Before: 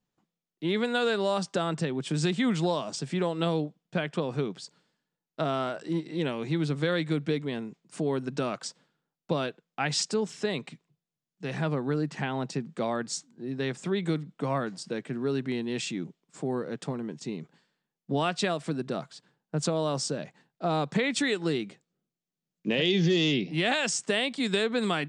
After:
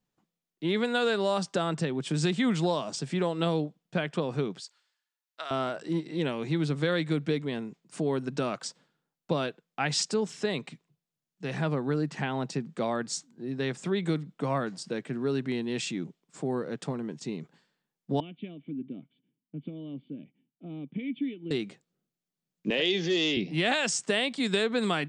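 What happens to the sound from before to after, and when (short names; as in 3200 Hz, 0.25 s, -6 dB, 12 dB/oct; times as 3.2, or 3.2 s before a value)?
4.6–5.51 HPF 1300 Hz
18.2–21.51 vocal tract filter i
22.7–23.37 HPF 310 Hz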